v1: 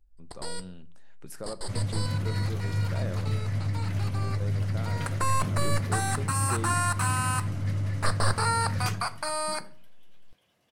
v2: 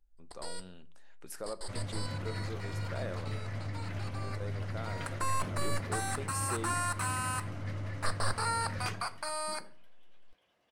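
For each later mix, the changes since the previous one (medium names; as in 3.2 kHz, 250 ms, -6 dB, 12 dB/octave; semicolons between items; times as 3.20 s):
first sound -5.5 dB; second sound: add low-pass 2.5 kHz 6 dB/octave; master: add peaking EQ 130 Hz -11.5 dB 1.9 oct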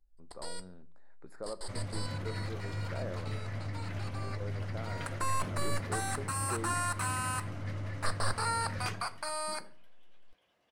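speech: add boxcar filter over 15 samples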